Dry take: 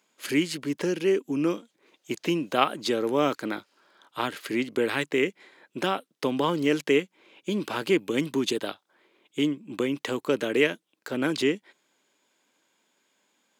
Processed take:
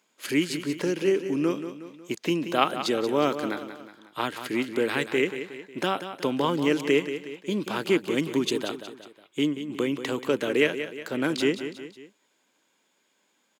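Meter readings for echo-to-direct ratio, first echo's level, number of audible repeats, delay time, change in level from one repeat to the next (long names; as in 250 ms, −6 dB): −9.5 dB, −10.5 dB, 3, 182 ms, −6.5 dB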